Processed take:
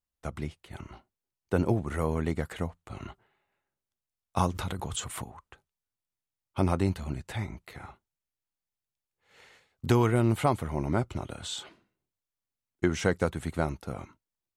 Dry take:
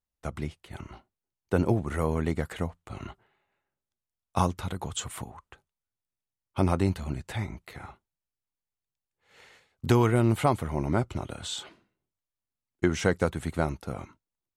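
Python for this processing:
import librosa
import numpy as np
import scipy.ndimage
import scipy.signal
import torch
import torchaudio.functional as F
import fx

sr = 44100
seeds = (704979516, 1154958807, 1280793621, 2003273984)

y = fx.pre_swell(x, sr, db_per_s=54.0, at=(4.43, 5.25))
y = y * librosa.db_to_amplitude(-1.5)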